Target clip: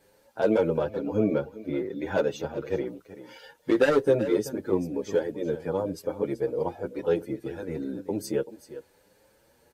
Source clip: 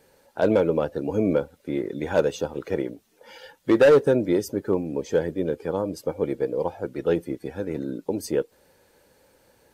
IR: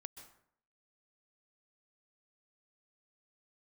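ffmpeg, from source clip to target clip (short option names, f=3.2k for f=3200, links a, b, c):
-filter_complex "[0:a]asettb=1/sr,asplit=3[a][b][c];[a]atrim=end=0.814[d];[b]atrim=start=0.81:end=2.87,asetpts=PTS-STARTPTS,afade=t=in:d=0.004:c=qsin,afade=t=out:st=2.056:d=0.004:c=qsin,equalizer=f=9k:t=o:w=0.91:g=-8[e];[c]atrim=start=2.866[f];[d][e]acrossfade=d=0.004:c1=hsin:c2=qsin[g];[g][f]acrossfade=d=0.004:c1=qsin:c2=hsin,aecho=1:1:383:0.188,asplit=2[h][i];[i]adelay=7.6,afreqshift=1[j];[h][j]amix=inputs=2:normalize=1"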